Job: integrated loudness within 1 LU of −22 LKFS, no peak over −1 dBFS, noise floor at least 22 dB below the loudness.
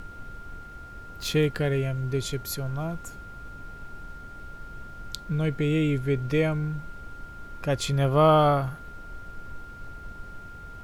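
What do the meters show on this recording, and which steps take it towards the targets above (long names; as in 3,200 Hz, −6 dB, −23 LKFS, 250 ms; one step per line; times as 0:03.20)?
interfering tone 1,400 Hz; level of the tone −43 dBFS; background noise floor −43 dBFS; target noise floor −48 dBFS; integrated loudness −26.0 LKFS; sample peak −8.5 dBFS; target loudness −22.0 LKFS
→ notch filter 1,400 Hz, Q 30
noise reduction from a noise print 6 dB
level +4 dB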